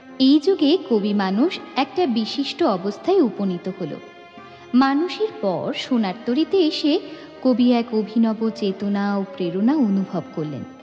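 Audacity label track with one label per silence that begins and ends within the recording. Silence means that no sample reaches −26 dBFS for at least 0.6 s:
3.980000	4.740000	silence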